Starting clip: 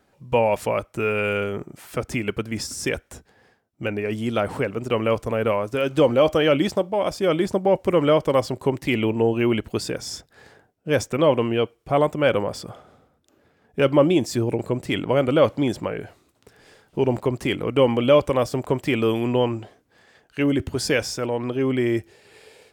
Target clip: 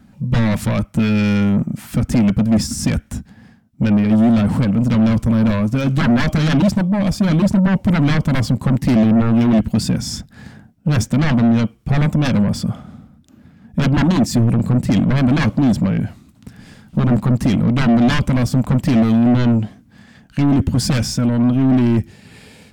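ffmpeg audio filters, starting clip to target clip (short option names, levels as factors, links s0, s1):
-af "aeval=exprs='0.596*(cos(1*acos(clip(val(0)/0.596,-1,1)))-cos(1*PI/2))+0.266*(cos(3*acos(clip(val(0)/0.596,-1,1)))-cos(3*PI/2))+0.211*(cos(7*acos(clip(val(0)/0.596,-1,1)))-cos(7*PI/2))':c=same,lowshelf=f=300:t=q:w=3:g=11,acontrast=67,volume=0.355"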